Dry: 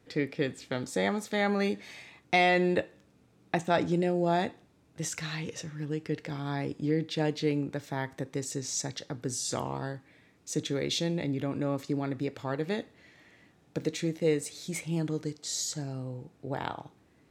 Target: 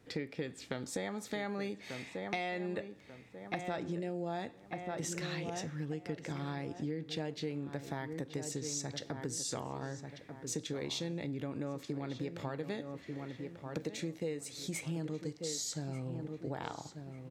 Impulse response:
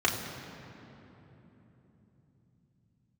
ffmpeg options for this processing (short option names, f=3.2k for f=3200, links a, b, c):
-filter_complex "[0:a]asplit=2[a][b];[b]adelay=1190,lowpass=f=2.3k:p=1,volume=-11dB,asplit=2[c][d];[d]adelay=1190,lowpass=f=2.3k:p=1,volume=0.35,asplit=2[e][f];[f]adelay=1190,lowpass=f=2.3k:p=1,volume=0.35,asplit=2[g][h];[h]adelay=1190,lowpass=f=2.3k:p=1,volume=0.35[i];[a][c][e][g][i]amix=inputs=5:normalize=0,acompressor=threshold=-35dB:ratio=6"